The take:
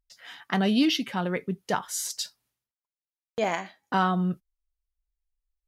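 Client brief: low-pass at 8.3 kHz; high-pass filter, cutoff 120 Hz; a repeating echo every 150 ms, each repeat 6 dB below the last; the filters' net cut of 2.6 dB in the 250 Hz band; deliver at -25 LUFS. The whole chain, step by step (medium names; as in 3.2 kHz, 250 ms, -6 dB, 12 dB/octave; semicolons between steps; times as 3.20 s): high-pass 120 Hz; low-pass 8.3 kHz; peaking EQ 250 Hz -3 dB; feedback delay 150 ms, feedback 50%, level -6 dB; trim +3 dB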